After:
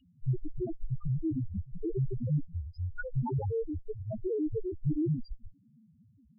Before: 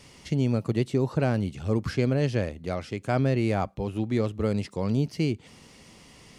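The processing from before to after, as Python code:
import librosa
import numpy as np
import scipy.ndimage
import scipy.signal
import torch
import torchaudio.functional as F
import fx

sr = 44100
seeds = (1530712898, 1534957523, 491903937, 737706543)

y = fx.block_reorder(x, sr, ms=121.0, group=2)
y = fx.dynamic_eq(y, sr, hz=280.0, q=0.8, threshold_db=-35.0, ratio=4.0, max_db=-4)
y = fx.cheby_harmonics(y, sr, harmonics=(3, 8), levels_db=(-36, -6), full_scale_db=-11.5)
y = fx.spec_topn(y, sr, count=1)
y = F.gain(torch.from_numpy(y), 3.0).numpy()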